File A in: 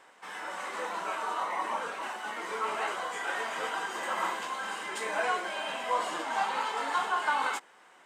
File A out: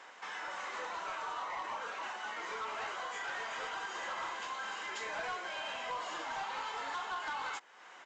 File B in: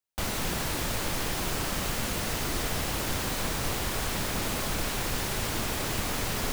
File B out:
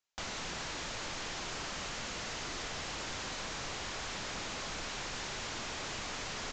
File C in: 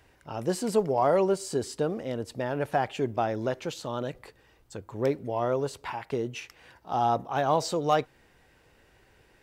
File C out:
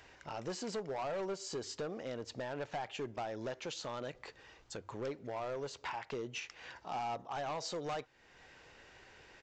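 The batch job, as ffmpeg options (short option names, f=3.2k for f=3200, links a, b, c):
-af "lowshelf=f=470:g=-9,bandreject=f=50:t=h:w=6,bandreject=f=100:t=h:w=6,acompressor=threshold=-50dB:ratio=2,aresample=16000,asoftclip=type=hard:threshold=-40dB,aresample=44100,volume=5.5dB"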